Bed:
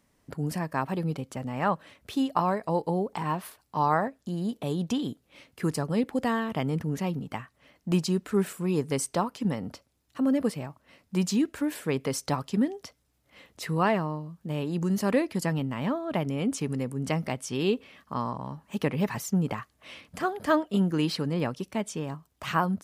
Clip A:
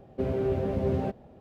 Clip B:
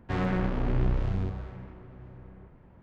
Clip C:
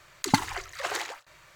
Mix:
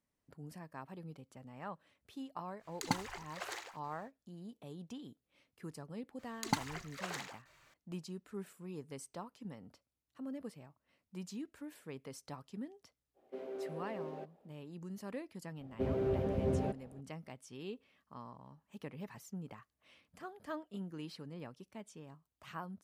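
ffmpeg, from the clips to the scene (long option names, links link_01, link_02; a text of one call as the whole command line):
ffmpeg -i bed.wav -i cue0.wav -i cue1.wav -i cue2.wav -filter_complex "[3:a]asplit=2[link_01][link_02];[1:a]asplit=2[link_03][link_04];[0:a]volume=-19dB[link_05];[link_03]highpass=frequency=300:width=0.5412,highpass=frequency=300:width=1.3066[link_06];[link_01]atrim=end=1.55,asetpts=PTS-STARTPTS,volume=-12dB,afade=type=in:duration=0.1,afade=type=out:start_time=1.45:duration=0.1,adelay=2570[link_07];[link_02]atrim=end=1.55,asetpts=PTS-STARTPTS,volume=-11dB,afade=type=in:duration=0.004:curve=hsin,afade=type=out:start_time=1.546:duration=0.004:curve=hsin,adelay=6190[link_08];[link_06]atrim=end=1.4,asetpts=PTS-STARTPTS,volume=-13.5dB,afade=type=in:duration=0.05,afade=type=out:start_time=1.35:duration=0.05,adelay=13140[link_09];[link_04]atrim=end=1.4,asetpts=PTS-STARTPTS,volume=-6dB,afade=type=in:duration=0.004:curve=hsin,afade=type=out:start_time=1.396:duration=0.004:curve=hsin,adelay=15610[link_10];[link_05][link_07][link_08][link_09][link_10]amix=inputs=5:normalize=0" out.wav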